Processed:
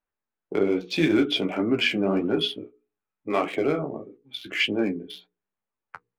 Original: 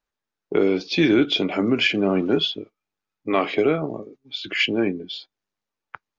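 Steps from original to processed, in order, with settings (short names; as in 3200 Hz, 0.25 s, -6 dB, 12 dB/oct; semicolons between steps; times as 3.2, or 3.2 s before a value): Wiener smoothing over 9 samples; notches 60/120/180/240/300/360/420/480 Hz; flange 1.7 Hz, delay 9.5 ms, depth 7.6 ms, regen -29%; gain +1 dB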